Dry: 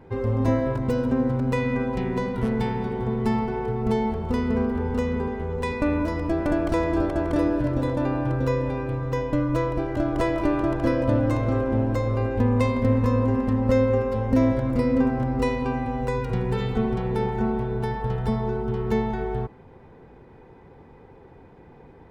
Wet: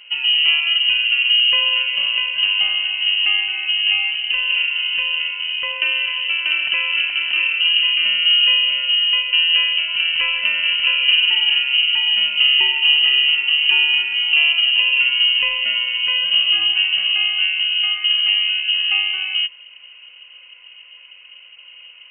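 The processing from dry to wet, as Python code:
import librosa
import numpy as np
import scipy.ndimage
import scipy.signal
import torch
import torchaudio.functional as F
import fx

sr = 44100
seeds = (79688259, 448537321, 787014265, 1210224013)

y = fx.peak_eq(x, sr, hz=140.0, db=11.5, octaves=0.71)
y = fx.freq_invert(y, sr, carrier_hz=3000)
y = y * 10.0 ** (1.5 / 20.0)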